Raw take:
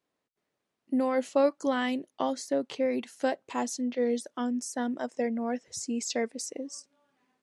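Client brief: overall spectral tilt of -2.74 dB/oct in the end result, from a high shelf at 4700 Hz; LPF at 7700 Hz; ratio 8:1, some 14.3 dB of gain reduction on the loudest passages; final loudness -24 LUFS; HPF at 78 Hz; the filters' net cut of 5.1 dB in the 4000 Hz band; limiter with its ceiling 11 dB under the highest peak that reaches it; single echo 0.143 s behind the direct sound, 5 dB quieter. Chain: HPF 78 Hz; LPF 7700 Hz; bell 4000 Hz -9 dB; high shelf 4700 Hz +3.5 dB; compressor 8:1, threshold -34 dBFS; limiter -31.5 dBFS; echo 0.143 s -5 dB; gain +16 dB

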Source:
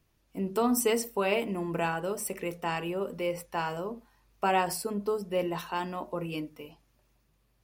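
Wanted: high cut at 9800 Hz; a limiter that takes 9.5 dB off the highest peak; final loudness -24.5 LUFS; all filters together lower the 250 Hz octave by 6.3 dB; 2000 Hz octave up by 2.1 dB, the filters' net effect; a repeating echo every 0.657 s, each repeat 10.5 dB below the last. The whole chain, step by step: LPF 9800 Hz; bell 250 Hz -9 dB; bell 2000 Hz +3 dB; limiter -23 dBFS; feedback echo 0.657 s, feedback 30%, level -10.5 dB; gain +10.5 dB

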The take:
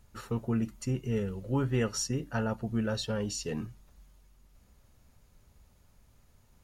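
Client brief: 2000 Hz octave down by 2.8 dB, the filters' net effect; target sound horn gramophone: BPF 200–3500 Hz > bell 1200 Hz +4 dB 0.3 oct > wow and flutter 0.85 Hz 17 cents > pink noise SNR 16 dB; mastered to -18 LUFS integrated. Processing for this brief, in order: BPF 200–3500 Hz; bell 1200 Hz +4 dB 0.3 oct; bell 2000 Hz -4.5 dB; wow and flutter 0.85 Hz 17 cents; pink noise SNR 16 dB; gain +17.5 dB

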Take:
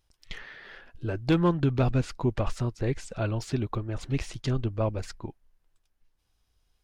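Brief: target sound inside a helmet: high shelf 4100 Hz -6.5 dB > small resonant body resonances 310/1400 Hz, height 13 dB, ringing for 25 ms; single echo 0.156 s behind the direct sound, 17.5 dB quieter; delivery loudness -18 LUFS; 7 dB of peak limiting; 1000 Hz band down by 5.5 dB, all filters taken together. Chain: bell 1000 Hz -6.5 dB; limiter -21.5 dBFS; high shelf 4100 Hz -6.5 dB; echo 0.156 s -17.5 dB; small resonant body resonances 310/1400 Hz, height 13 dB, ringing for 25 ms; gain +9 dB

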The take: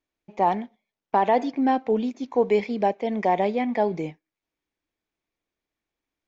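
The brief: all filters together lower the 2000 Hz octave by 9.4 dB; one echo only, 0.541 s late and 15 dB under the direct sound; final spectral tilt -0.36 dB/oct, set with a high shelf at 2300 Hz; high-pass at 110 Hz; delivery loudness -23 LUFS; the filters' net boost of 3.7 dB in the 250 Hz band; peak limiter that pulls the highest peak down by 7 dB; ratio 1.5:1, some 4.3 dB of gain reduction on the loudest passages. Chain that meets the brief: HPF 110 Hz; bell 250 Hz +4.5 dB; bell 2000 Hz -8.5 dB; high shelf 2300 Hz -5 dB; compressor 1.5:1, threshold -27 dBFS; limiter -19 dBFS; echo 0.541 s -15 dB; gain +6 dB

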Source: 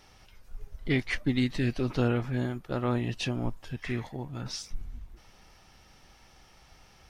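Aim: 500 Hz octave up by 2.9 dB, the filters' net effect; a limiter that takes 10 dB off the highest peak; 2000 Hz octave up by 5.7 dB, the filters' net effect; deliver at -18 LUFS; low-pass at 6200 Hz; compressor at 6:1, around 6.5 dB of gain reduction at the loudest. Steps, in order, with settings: LPF 6200 Hz; bell 500 Hz +3.5 dB; bell 2000 Hz +6.5 dB; compressor 6:1, threshold -27 dBFS; gain +20.5 dB; limiter -6.5 dBFS

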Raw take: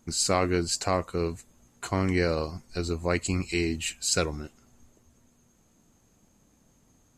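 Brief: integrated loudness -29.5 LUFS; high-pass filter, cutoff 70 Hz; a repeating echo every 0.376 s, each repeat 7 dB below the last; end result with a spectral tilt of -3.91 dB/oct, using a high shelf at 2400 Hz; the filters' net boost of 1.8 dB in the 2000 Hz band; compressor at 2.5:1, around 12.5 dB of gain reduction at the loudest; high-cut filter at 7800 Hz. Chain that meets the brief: HPF 70 Hz; LPF 7800 Hz; bell 2000 Hz +4 dB; high shelf 2400 Hz -3.5 dB; compressor 2.5:1, threshold -39 dBFS; feedback echo 0.376 s, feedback 45%, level -7 dB; gain +9.5 dB

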